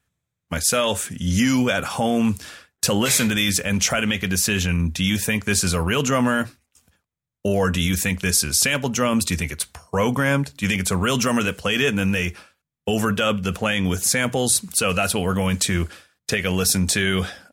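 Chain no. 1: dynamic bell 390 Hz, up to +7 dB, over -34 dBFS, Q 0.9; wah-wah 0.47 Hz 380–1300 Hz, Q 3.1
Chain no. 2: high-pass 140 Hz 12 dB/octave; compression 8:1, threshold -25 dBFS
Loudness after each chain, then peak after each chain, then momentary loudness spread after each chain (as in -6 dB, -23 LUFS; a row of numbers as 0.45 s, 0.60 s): -28.0 LUFS, -29.0 LUFS; -9.5 dBFS, -11.5 dBFS; 15 LU, 5 LU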